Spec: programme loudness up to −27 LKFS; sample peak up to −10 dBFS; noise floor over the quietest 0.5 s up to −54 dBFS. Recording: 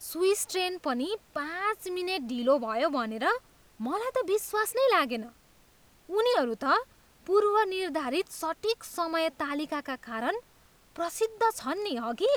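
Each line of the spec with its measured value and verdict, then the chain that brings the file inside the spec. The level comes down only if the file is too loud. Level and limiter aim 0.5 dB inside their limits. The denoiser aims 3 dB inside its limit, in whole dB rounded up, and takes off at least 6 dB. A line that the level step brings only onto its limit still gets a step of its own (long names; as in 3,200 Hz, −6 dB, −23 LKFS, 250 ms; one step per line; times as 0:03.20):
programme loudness −29.5 LKFS: in spec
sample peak −12.0 dBFS: in spec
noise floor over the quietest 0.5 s −60 dBFS: in spec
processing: no processing needed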